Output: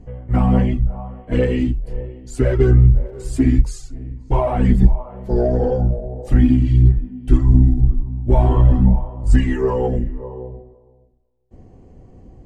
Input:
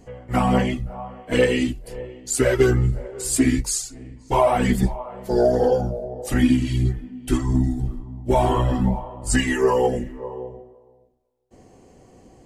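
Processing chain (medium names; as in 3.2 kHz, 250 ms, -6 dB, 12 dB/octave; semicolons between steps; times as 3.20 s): in parallel at -10.5 dB: saturation -20.5 dBFS, distortion -8 dB; 3.05–3.50 s: on the sum: crackle 270 per s -40 dBFS; RIAA curve playback; trim -5.5 dB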